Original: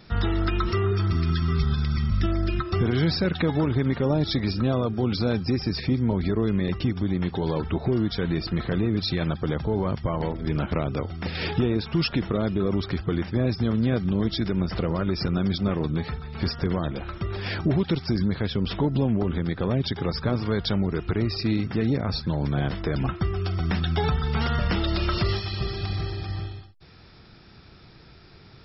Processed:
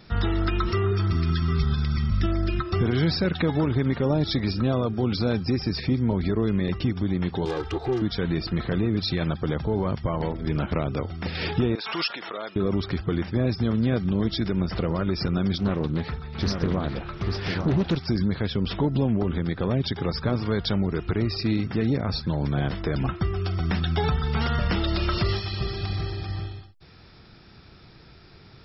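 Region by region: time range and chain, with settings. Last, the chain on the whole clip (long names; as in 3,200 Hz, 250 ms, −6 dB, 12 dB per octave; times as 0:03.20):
0:07.45–0:08.02: phase distortion by the signal itself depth 0.24 ms + low-shelf EQ 410 Hz −7.5 dB + comb filter 2.5 ms, depth 94%
0:11.75–0:12.56: high-pass filter 740 Hz + background raised ahead of every attack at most 48 dB per second
0:15.54–0:17.97: single-tap delay 844 ms −5.5 dB + highs frequency-modulated by the lows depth 0.34 ms
whole clip: no processing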